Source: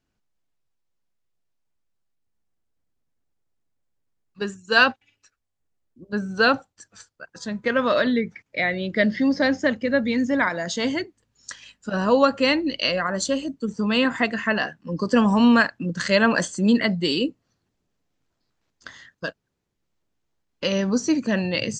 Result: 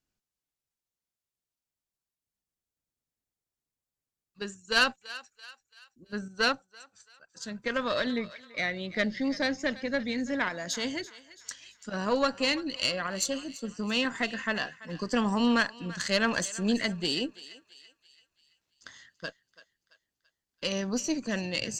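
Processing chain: tube stage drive 8 dB, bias 0.65; high shelf 3900 Hz +11 dB; thinning echo 0.335 s, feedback 47%, high-pass 830 Hz, level -16 dB; 6.28–7.37 upward expander 1.5:1, over -33 dBFS; gain -6.5 dB

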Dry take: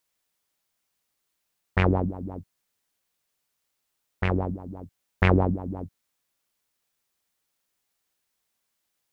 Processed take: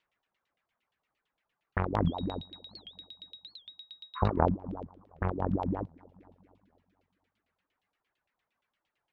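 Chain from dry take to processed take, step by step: limiter -13.5 dBFS, peak gain reduction 8 dB; 4.18–4.4 spectral repair 1000–3300 Hz after; 4.76–5.32 high shelf 2300 Hz -8 dB; negative-ratio compressor -27 dBFS, ratio -0.5; on a send: dark delay 0.24 s, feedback 50%, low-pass 2100 Hz, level -17.5 dB; on the sum: added harmonics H 3 -17 dB, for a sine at -13.5 dBFS; 2.07–4.23 whine 3800 Hz -43 dBFS; reverb removal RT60 0.68 s; LFO low-pass saw down 8.7 Hz 710–3200 Hz; record warp 78 rpm, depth 250 cents; gain +4 dB

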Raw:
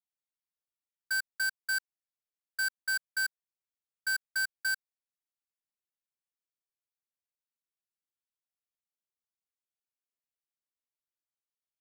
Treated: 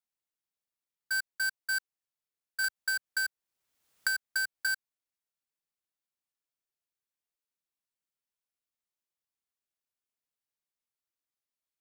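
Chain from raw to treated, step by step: 2.64–4.67 three-band squash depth 100%

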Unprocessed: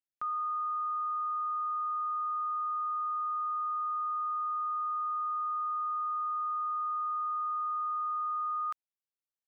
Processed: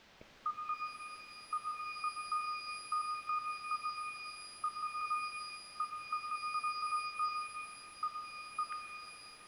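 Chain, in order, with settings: random spectral dropouts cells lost 83%; dynamic EQ 1200 Hz, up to -6 dB, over -46 dBFS, Q 2.2; requantised 10-bit, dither triangular; air absorption 220 m; shimmer reverb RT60 2.9 s, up +12 st, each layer -8 dB, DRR 4.5 dB; gain +6.5 dB

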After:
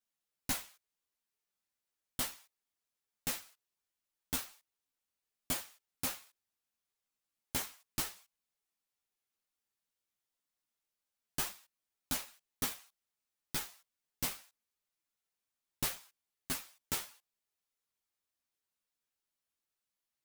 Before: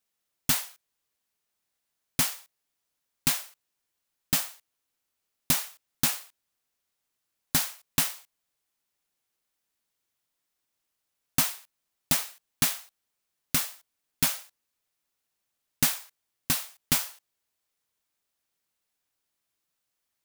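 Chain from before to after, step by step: self-modulated delay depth 0.53 ms; ensemble effect; gain -5.5 dB

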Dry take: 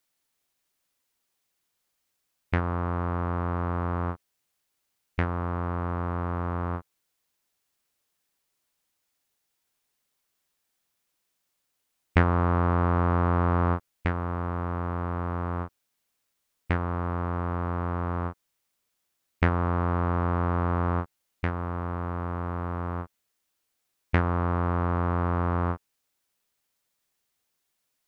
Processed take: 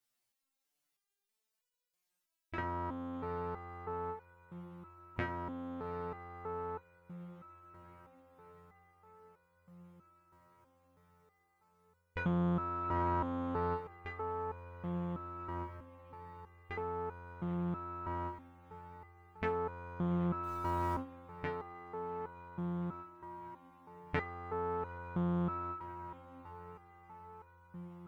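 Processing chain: diffused feedback echo 0.802 s, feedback 74%, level -15 dB; 20.43–20.94 sample gate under -35.5 dBFS; stepped resonator 3.1 Hz 120–490 Hz; gain +4 dB

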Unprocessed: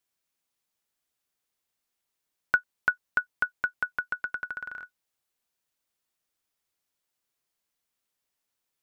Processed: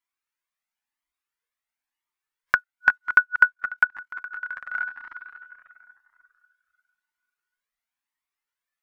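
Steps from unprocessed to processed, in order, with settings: regenerating reverse delay 0.272 s, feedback 51%, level -11.5 dB; graphic EQ 125/250/500/1000/2000 Hz -10/+4/-5/+8/+9 dB; in parallel at -2 dB: compressor 6:1, threshold -27 dBFS, peak gain reduction 16.5 dB; on the sum: spectral noise reduction 13 dB; 3.54–4.75 level quantiser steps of 16 dB; cascading flanger rising 0.98 Hz; gain +2.5 dB

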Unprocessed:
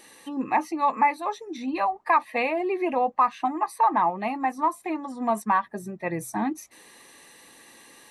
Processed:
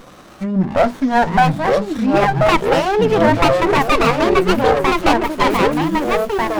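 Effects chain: speed glide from 61% -> 185%; in parallel at 0 dB: limiter -21 dBFS, peak gain reduction 11 dB; on the sum: echoes that change speed 0.774 s, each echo -3 st, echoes 3; running maximum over 17 samples; gain +6.5 dB

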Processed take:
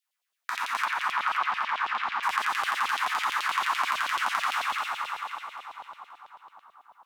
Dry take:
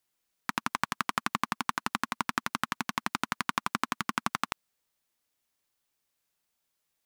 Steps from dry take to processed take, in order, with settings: spectral trails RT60 1.70 s; 0.85–2.23 air absorption 210 m; on a send: split-band echo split 1100 Hz, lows 0.577 s, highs 0.264 s, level -5 dB; on the sum: spring tank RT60 2.5 s, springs 30/34 ms, chirp 35 ms, DRR -0.5 dB; LFO high-pass saw down 9.1 Hz 570–3600 Hz; gain -8 dB

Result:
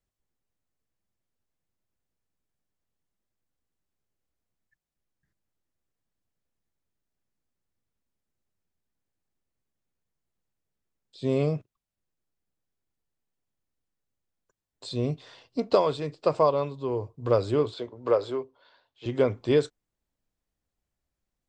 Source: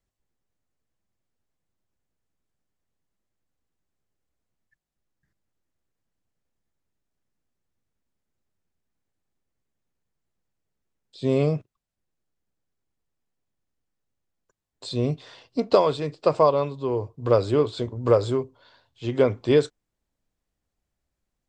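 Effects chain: 17.74–19.06 three-band isolator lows -15 dB, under 290 Hz, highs -13 dB, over 5100 Hz; gain -3.5 dB

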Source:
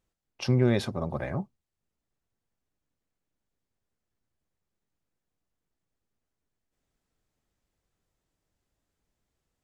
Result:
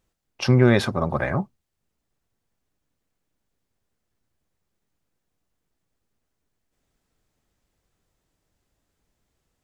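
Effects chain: dynamic EQ 1400 Hz, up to +7 dB, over -47 dBFS, Q 1.1; gain +6.5 dB

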